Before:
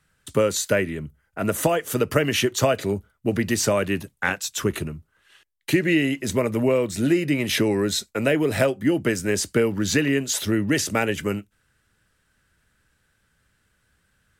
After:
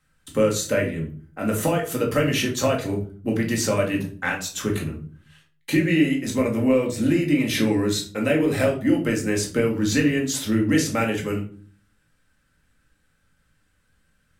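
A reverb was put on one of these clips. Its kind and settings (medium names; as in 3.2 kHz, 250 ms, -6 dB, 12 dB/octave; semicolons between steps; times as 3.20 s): simulated room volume 340 m³, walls furnished, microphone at 2.1 m; trim -4.5 dB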